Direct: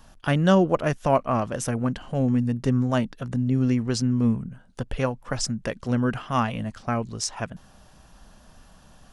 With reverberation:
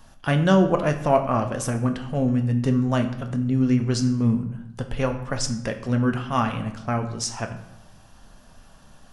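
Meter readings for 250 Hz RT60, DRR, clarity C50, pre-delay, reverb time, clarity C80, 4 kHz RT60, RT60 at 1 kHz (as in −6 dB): 1.0 s, 5.0 dB, 10.0 dB, 7 ms, 0.80 s, 12.5 dB, 0.60 s, 0.80 s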